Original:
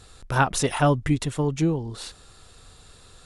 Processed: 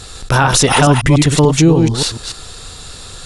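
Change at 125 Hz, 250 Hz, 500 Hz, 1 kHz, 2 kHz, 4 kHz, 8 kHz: +13.0, +12.5, +11.5, +10.5, +11.5, +17.5, +16.0 dB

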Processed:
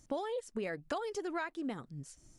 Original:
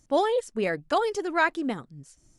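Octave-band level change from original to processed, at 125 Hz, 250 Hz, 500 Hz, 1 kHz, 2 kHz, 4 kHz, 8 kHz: -5.5, -9.0, -12.0, -14.5, -14.5, -12.5, -7.0 dB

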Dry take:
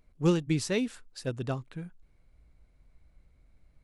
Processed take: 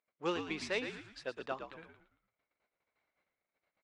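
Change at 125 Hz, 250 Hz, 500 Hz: -22.5, -13.0, -6.5 dB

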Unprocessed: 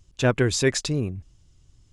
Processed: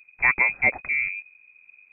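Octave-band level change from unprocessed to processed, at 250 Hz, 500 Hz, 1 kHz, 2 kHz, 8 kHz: -17.5 dB, -14.0 dB, +4.0 dB, +10.5 dB, under -40 dB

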